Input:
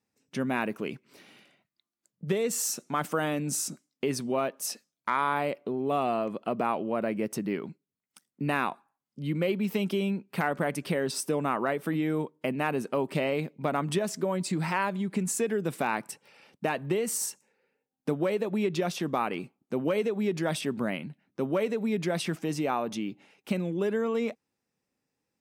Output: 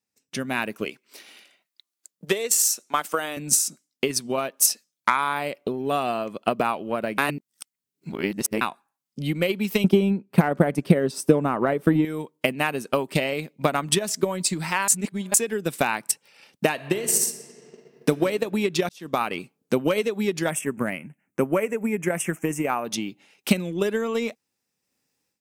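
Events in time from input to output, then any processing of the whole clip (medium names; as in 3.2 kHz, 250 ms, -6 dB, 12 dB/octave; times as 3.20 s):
0.85–3.37 s: high-pass 330 Hz
7.18–8.61 s: reverse
9.84–12.05 s: tilt shelf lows +8 dB, about 1.3 kHz
14.88–15.34 s: reverse
16.71–18.09 s: reverb throw, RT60 2.4 s, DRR 5 dB
18.89–19.31 s: fade in linear
20.50–22.85 s: Chebyshev band-stop 2.3–7.3 kHz
whole clip: treble shelf 2.4 kHz +11 dB; level rider gain up to 11 dB; transient shaper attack +9 dB, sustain -4 dB; trim -9 dB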